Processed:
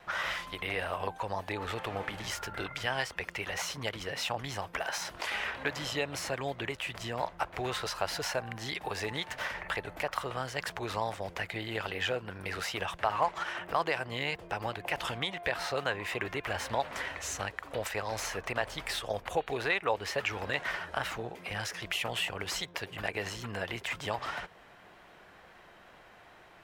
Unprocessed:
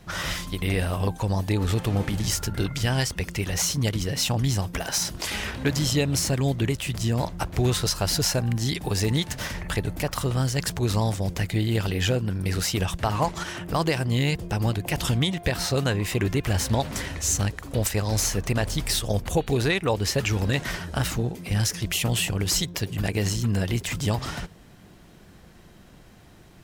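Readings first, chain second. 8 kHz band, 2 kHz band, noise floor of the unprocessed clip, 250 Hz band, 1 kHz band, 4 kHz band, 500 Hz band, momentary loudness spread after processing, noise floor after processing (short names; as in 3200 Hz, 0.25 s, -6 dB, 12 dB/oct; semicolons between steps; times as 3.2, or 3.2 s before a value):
-14.5 dB, -2.0 dB, -50 dBFS, -16.0 dB, -1.5 dB, -8.0 dB, -6.5 dB, 5 LU, -56 dBFS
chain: three-band isolator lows -20 dB, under 510 Hz, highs -16 dB, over 3000 Hz; in parallel at +1 dB: compressor, threshold -43 dBFS, peak gain reduction 20.5 dB; on the sum: wow and flutter 26 cents; gain -2.5 dB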